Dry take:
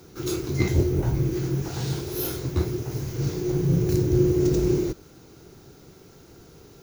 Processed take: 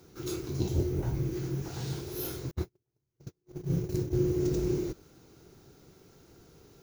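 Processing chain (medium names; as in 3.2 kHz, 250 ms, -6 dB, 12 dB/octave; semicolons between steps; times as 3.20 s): 0.55–0.83 s: spectral replace 1–2.6 kHz; 2.51–4.18 s: gate -21 dBFS, range -46 dB; trim -7.5 dB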